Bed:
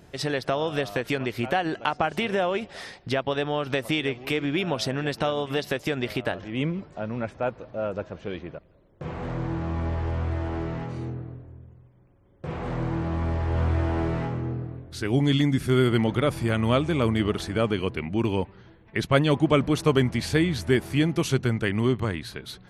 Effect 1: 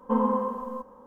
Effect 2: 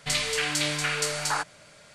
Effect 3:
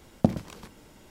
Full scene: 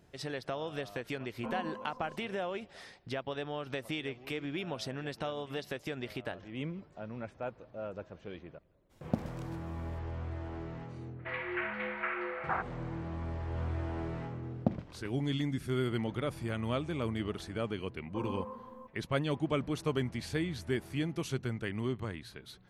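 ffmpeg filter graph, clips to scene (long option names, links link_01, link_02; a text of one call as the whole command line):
ffmpeg -i bed.wav -i cue0.wav -i cue1.wav -i cue2.wav -filter_complex "[1:a]asplit=2[link_01][link_02];[3:a]asplit=2[link_03][link_04];[0:a]volume=-11.5dB[link_05];[link_03]agate=range=-33dB:threshold=-52dB:ratio=3:release=100:detection=peak[link_06];[2:a]highpass=frequency=310:width_type=q:width=0.5412,highpass=frequency=310:width_type=q:width=1.307,lowpass=frequency=2300:width_type=q:width=0.5176,lowpass=frequency=2300:width_type=q:width=0.7071,lowpass=frequency=2300:width_type=q:width=1.932,afreqshift=-89[link_07];[link_04]lowpass=3000[link_08];[link_01]atrim=end=1.06,asetpts=PTS-STARTPTS,volume=-16.5dB,afade=type=in:duration=0.004:curve=hsin,afade=type=out:start_time=1.056:duration=0.004:curve=hsin,adelay=1340[link_09];[link_06]atrim=end=1.1,asetpts=PTS-STARTPTS,volume=-10.5dB,afade=type=in:duration=0.004:curve=hsin,afade=type=out:start_time=1.096:duration=0.004:curve=hsin,adelay=8890[link_10];[link_07]atrim=end=1.94,asetpts=PTS-STARTPTS,volume=-5dB,afade=type=in:duration=0.004:curve=hsin,afade=type=out:start_time=1.936:duration=0.004:curve=hsin,adelay=11190[link_11];[link_08]atrim=end=1.1,asetpts=PTS-STARTPTS,volume=-8.5dB,afade=type=in:duration=0.004:curve=hsin,afade=type=out:start_time=1.096:duration=0.004:curve=hsin,adelay=14420[link_12];[link_02]atrim=end=1.06,asetpts=PTS-STARTPTS,volume=-15dB,afade=type=in:duration=0.004:curve=hsin,afade=type=out:start_time=1.056:duration=0.004:curve=hsin,adelay=18050[link_13];[link_05][link_09][link_10][link_11][link_12][link_13]amix=inputs=6:normalize=0" out.wav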